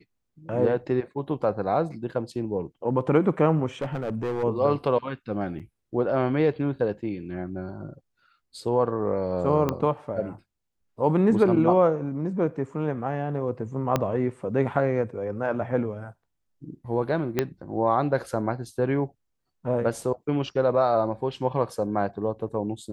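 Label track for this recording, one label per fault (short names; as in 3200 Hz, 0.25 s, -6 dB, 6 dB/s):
3.810000	4.440000	clipped -24 dBFS
5.590000	5.600000	gap 7.4 ms
9.690000	9.690000	pop -12 dBFS
13.960000	13.960000	pop -9 dBFS
17.390000	17.390000	pop -9 dBFS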